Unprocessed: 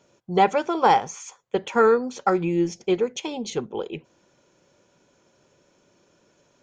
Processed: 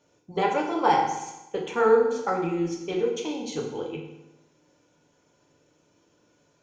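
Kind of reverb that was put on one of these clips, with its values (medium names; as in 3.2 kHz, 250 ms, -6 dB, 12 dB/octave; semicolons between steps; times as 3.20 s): FDN reverb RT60 0.94 s, low-frequency decay 1.1×, high-frequency decay 0.85×, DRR -1.5 dB; trim -7 dB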